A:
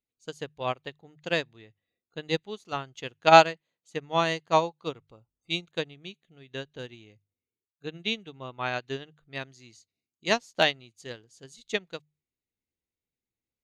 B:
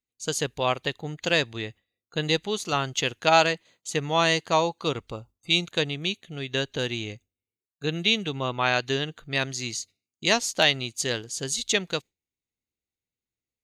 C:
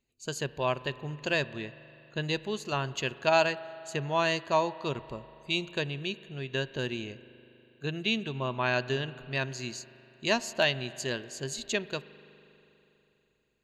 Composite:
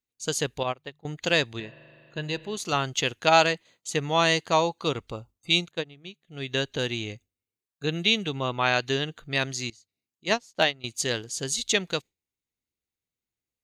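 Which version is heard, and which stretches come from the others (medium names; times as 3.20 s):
B
0.63–1.05 s: from A
1.60–2.57 s: from C
5.66–6.35 s: from A, crossfade 0.16 s
9.70–10.84 s: from A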